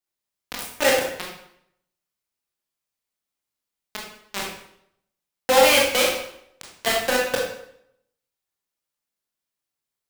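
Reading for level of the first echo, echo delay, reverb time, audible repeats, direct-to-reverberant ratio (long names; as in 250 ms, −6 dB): no echo audible, no echo audible, 0.70 s, no echo audible, −2.5 dB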